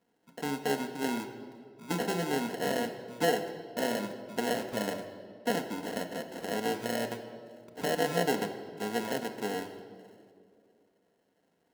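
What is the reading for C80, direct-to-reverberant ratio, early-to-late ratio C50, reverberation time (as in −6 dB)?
11.0 dB, 4.0 dB, 9.5 dB, 2.3 s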